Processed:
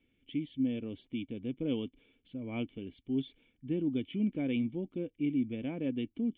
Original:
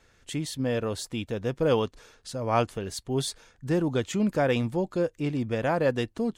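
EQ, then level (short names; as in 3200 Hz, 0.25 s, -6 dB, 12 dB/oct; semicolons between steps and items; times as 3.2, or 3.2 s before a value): vocal tract filter i; low shelf 340 Hz -7.5 dB; +6.0 dB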